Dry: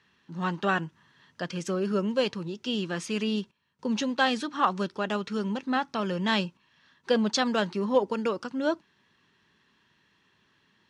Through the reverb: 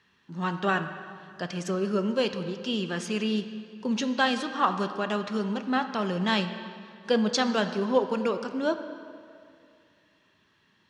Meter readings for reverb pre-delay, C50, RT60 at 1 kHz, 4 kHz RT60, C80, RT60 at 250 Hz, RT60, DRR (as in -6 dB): 3 ms, 9.5 dB, 2.4 s, 1.8 s, 10.5 dB, 2.3 s, 2.4 s, 8.0 dB